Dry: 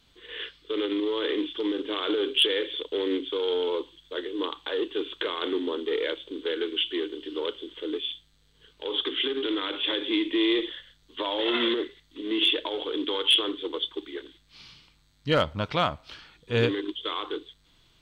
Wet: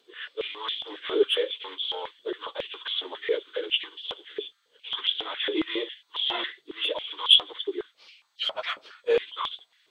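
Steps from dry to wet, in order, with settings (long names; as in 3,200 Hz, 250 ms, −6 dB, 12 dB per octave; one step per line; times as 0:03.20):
time stretch by phase vocoder 0.55×
high-pass on a step sequencer 7.3 Hz 400–3,300 Hz
level −1 dB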